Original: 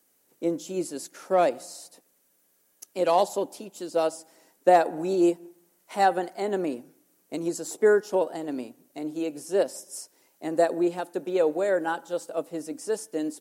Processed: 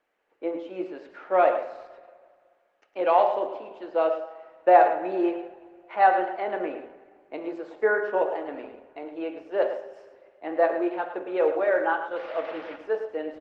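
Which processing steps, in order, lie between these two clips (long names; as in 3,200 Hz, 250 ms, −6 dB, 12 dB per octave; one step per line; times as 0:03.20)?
0:12.16–0:12.76: linear delta modulator 32 kbit/s, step −32.5 dBFS
high-pass filter 560 Hz 12 dB per octave
0:08.47–0:09.09: noise gate −59 dBFS, range −29 dB
low-pass filter 2,600 Hz 24 dB per octave
single-tap delay 108 ms −10 dB
convolution reverb, pre-delay 3 ms, DRR 5 dB
level +3 dB
Opus 20 kbit/s 48,000 Hz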